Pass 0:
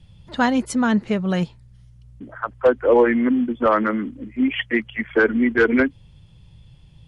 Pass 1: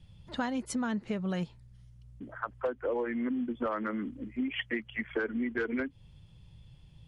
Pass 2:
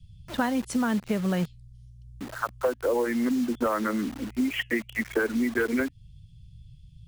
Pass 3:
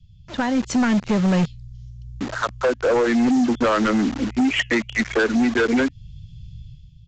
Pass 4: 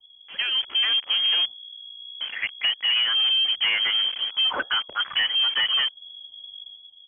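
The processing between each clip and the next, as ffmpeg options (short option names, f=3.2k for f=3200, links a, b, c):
-af "acompressor=threshold=-23dB:ratio=6,volume=-6.5dB"
-filter_complex "[0:a]acrossover=split=180|2900[a][b][c];[b]acrusher=bits=7:mix=0:aa=0.000001[d];[c]flanger=delay=4.6:depth=9.2:regen=68:speed=0.96:shape=triangular[e];[a][d][e]amix=inputs=3:normalize=0,volume=6.5dB"
-af "dynaudnorm=f=110:g=9:m=11dB,aresample=16000,asoftclip=type=hard:threshold=-15dB,aresample=44100"
-af "lowpass=f=2.9k:t=q:w=0.5098,lowpass=f=2.9k:t=q:w=0.6013,lowpass=f=2.9k:t=q:w=0.9,lowpass=f=2.9k:t=q:w=2.563,afreqshift=-3400,equalizer=f=110:t=o:w=0.3:g=-9,volume=-4dB"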